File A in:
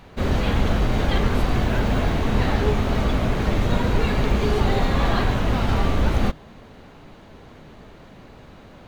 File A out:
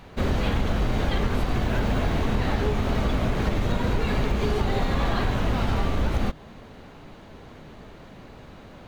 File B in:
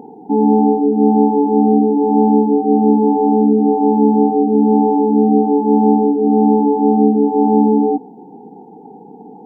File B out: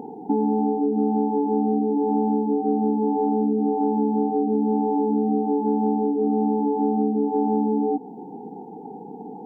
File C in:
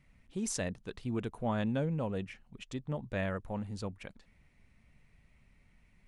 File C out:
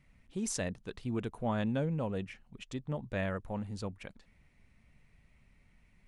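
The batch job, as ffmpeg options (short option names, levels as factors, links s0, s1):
-af "acompressor=threshold=0.112:ratio=6"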